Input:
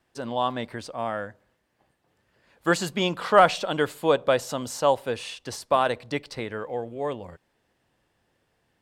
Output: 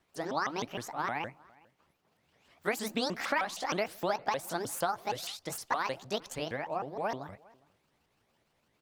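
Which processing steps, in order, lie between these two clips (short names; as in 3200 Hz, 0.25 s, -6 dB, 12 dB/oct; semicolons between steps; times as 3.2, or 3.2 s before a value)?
repeated pitch sweeps +10 st, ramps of 0.155 s; compressor 12:1, threshold -25 dBFS, peak gain reduction 14.5 dB; outdoor echo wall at 70 m, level -25 dB; gain -2 dB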